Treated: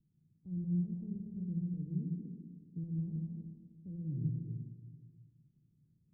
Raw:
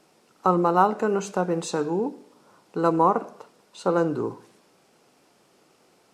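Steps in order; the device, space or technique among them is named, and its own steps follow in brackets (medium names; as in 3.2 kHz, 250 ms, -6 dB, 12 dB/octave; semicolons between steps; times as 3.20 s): club heard from the street (peak limiter -17.5 dBFS, peak gain reduction 11.5 dB; low-pass 140 Hz 24 dB/octave; reverberation RT60 1.5 s, pre-delay 113 ms, DRR 1 dB); trim +2.5 dB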